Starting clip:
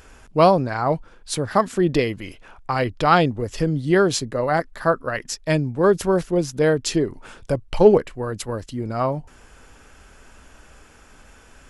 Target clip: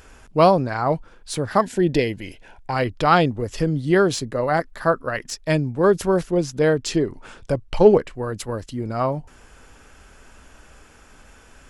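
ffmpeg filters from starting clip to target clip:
-filter_complex "[0:a]asettb=1/sr,asplit=3[s0][s1][s2];[s0]atrim=end=6.304[s3];[s1]atrim=start=6.3:end=8.15,asetpts=PTS-STARTPTS,afade=t=in:d=0.004:c=qsin,afade=t=out:st=1.846:d=0.004:c=qsin,lowpass=9600[s4];[s2]atrim=start=8.146[s5];[s3][s4]acrossfade=d=0.004:c1=hsin:c2=qsin[s6];[s6][s5]acrossfade=d=0.004:c1=qsin:c2=hsin,deesser=0.45,asettb=1/sr,asplit=3[s7][s8][s9];[s7]atrim=end=1.614[s10];[s8]atrim=start=1.61:end=2.73,asetpts=PTS-STARTPTS,afade=t=in:d=0.004:c=qsin,afade=t=out:st=1.116:d=0.004:c=qsin,asuperstop=centerf=1200:order=4:qfactor=2.8[s11];[s9]atrim=start=2.726[s12];[s10][s11]acrossfade=d=0.004:c1=hsin:c2=qsin[s13];[s13][s12]acrossfade=d=0.004:c1=qsin:c2=hsin"

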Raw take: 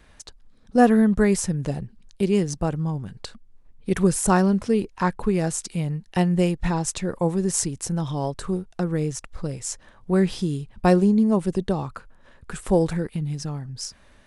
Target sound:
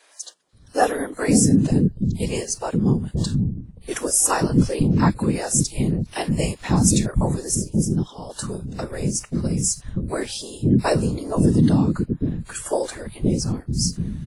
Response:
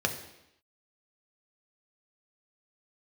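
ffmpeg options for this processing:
-filter_complex "[0:a]bass=f=250:g=4,treble=f=4000:g=9,asettb=1/sr,asplit=3[s0][s1][s2];[s0]atrim=end=7.544[s3];[s1]atrim=start=7.54:end=8.3,asetpts=PTS-STARTPTS,afade=t=in:d=0.004:c=qsin,afade=t=out:st=0.756:d=0.004:c=qsin,acompressor=threshold=0.0447:ratio=20[s4];[s2]atrim=start=8.296[s5];[s3][s4]acrossfade=d=0.004:c1=hsin:c2=qsin[s6];[s6][s5]acrossfade=d=0.004:c1=qsin:c2=hsin,afftfilt=real='hypot(re,im)*cos(2*PI*random(0))':imag='hypot(re,im)*sin(2*PI*random(1))':win_size=512:overlap=0.75,acrossover=split=390[s7][s8];[s7]adelay=530[s9];[s9][s8]amix=inputs=2:normalize=0,alimiter=level_in=3.35:limit=0.891:release=50:level=0:latency=1,volume=0.631" -ar 32000 -c:a wmav2 -b:a 32k

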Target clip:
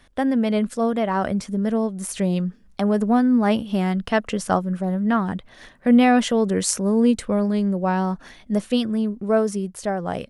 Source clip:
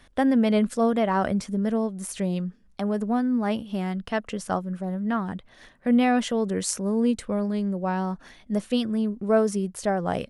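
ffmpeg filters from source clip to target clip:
-af "dynaudnorm=f=350:g=11:m=2.24"

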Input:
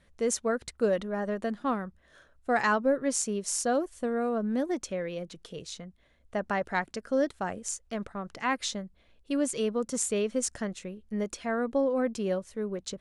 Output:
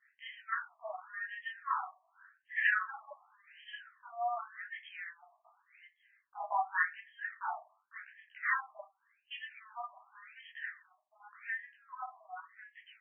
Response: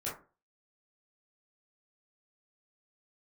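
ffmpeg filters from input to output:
-filter_complex "[0:a]lowpass=f=4900:t=q:w=4.9[s0];[1:a]atrim=start_sample=2205,asetrate=57330,aresample=44100[s1];[s0][s1]afir=irnorm=-1:irlink=0,afftfilt=real='re*between(b*sr/1024,850*pow(2400/850,0.5+0.5*sin(2*PI*0.88*pts/sr))/1.41,850*pow(2400/850,0.5+0.5*sin(2*PI*0.88*pts/sr))*1.41)':imag='im*between(b*sr/1024,850*pow(2400/850,0.5+0.5*sin(2*PI*0.88*pts/sr))/1.41,850*pow(2400/850,0.5+0.5*sin(2*PI*0.88*pts/sr))*1.41)':win_size=1024:overlap=0.75"

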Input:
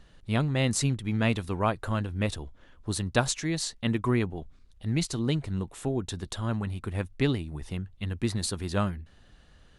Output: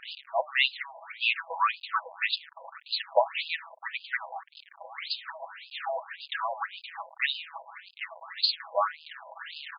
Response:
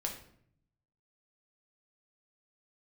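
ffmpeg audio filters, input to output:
-af "aeval=exprs='val(0)+0.5*0.0188*sgn(val(0))':c=same,highpass=460,aecho=1:1:6.1:0.95,afftfilt=real='re*between(b*sr/1024,720*pow(3600/720,0.5+0.5*sin(2*PI*1.8*pts/sr))/1.41,720*pow(3600/720,0.5+0.5*sin(2*PI*1.8*pts/sr))*1.41)':imag='im*between(b*sr/1024,720*pow(3600/720,0.5+0.5*sin(2*PI*1.8*pts/sr))/1.41,720*pow(3600/720,0.5+0.5*sin(2*PI*1.8*pts/sr))*1.41)':win_size=1024:overlap=0.75,volume=2"

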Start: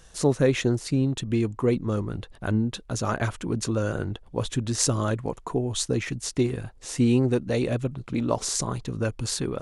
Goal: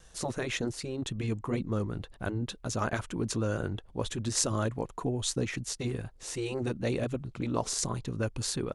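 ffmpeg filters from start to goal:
-af "afftfilt=real='re*lt(hypot(re,im),0.562)':imag='im*lt(hypot(re,im),0.562)':win_size=1024:overlap=0.75,atempo=1.1,volume=0.631"

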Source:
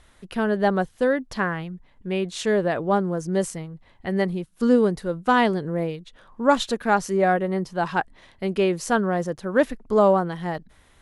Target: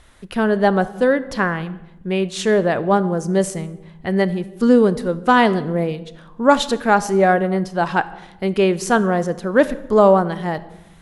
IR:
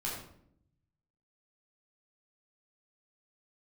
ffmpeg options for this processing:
-filter_complex "[0:a]asplit=2[s0][s1];[1:a]atrim=start_sample=2205,asetrate=29547,aresample=44100,adelay=31[s2];[s1][s2]afir=irnorm=-1:irlink=0,volume=0.0891[s3];[s0][s3]amix=inputs=2:normalize=0,volume=1.78"

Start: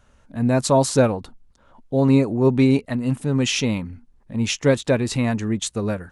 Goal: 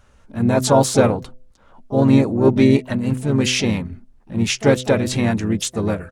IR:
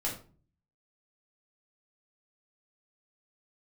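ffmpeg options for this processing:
-filter_complex "[0:a]asplit=3[s0][s1][s2];[s1]asetrate=37084,aresample=44100,atempo=1.18921,volume=0.447[s3];[s2]asetrate=66075,aresample=44100,atempo=0.66742,volume=0.2[s4];[s0][s3][s4]amix=inputs=3:normalize=0,bandreject=f=127.1:t=h:w=4,bandreject=f=254.2:t=h:w=4,bandreject=f=381.3:t=h:w=4,bandreject=f=508.4:t=h:w=4,bandreject=f=635.5:t=h:w=4,volume=1.26"

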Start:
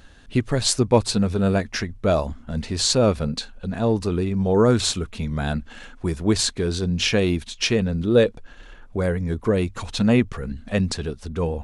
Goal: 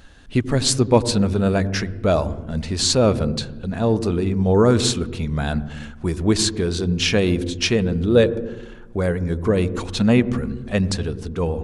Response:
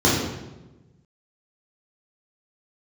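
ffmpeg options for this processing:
-filter_complex "[0:a]asplit=2[s0][s1];[1:a]atrim=start_sample=2205,lowpass=2100,adelay=84[s2];[s1][s2]afir=irnorm=-1:irlink=0,volume=0.015[s3];[s0][s3]amix=inputs=2:normalize=0,volume=1.19"

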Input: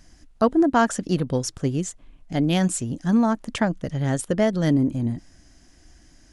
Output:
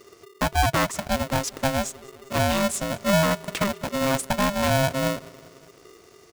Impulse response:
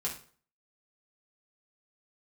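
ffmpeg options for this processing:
-filter_complex "[0:a]alimiter=limit=0.224:level=0:latency=1:release=359,asplit=2[s0][s1];[s1]aecho=0:1:199|398|597|796:0.0668|0.0394|0.0233|0.0137[s2];[s0][s2]amix=inputs=2:normalize=0,aeval=exprs='val(0)*sgn(sin(2*PI*400*n/s))':c=same"

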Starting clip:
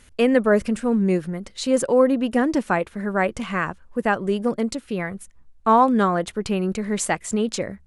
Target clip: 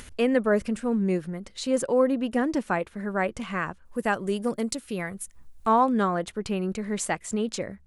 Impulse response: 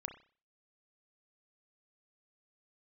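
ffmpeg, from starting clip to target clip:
-filter_complex "[0:a]acompressor=mode=upward:threshold=0.0355:ratio=2.5,asettb=1/sr,asplit=3[s0][s1][s2];[s0]atrim=end=3.854[s3];[s1]atrim=start=3.85:end=5.69,asetpts=PTS-STARTPTS,afade=t=in:d=0.004:c=qsin,afade=t=out:st=1.836:d=0.004:c=qsin,aemphasis=mode=production:type=50kf[s4];[s2]atrim=start=5.686[s5];[s3][s4]acrossfade=d=0.004:c1=hsin:c2=qsin[s6];[s6][s5]acrossfade=d=0.004:c1=qsin:c2=hsin,volume=0.562"

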